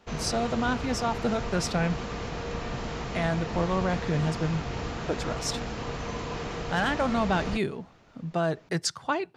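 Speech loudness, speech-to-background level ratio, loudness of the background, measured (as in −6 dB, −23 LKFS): −29.5 LKFS, 5.0 dB, −34.5 LKFS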